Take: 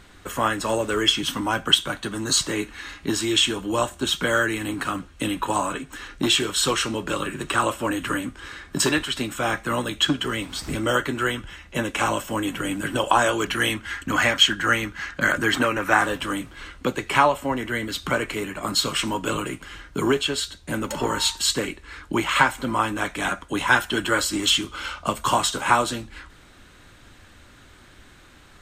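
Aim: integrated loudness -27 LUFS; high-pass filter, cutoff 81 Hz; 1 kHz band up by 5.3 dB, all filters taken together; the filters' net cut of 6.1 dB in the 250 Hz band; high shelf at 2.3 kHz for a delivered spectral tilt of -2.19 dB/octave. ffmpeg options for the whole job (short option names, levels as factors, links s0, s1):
-af "highpass=81,equalizer=f=250:t=o:g=-9,equalizer=f=1000:t=o:g=5,highshelf=f=2300:g=9,volume=0.355"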